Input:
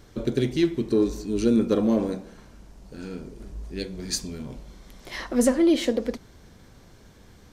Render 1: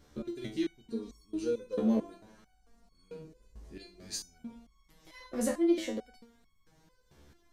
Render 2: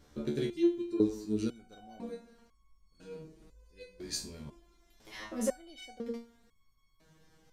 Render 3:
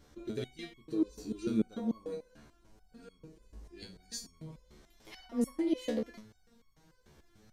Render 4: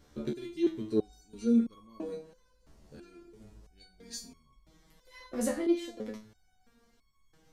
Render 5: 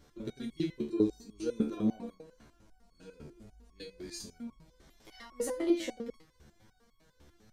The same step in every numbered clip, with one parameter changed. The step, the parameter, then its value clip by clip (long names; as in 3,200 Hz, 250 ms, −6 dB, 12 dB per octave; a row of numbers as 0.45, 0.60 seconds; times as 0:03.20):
step-sequenced resonator, speed: 4.5, 2, 6.8, 3, 10 Hertz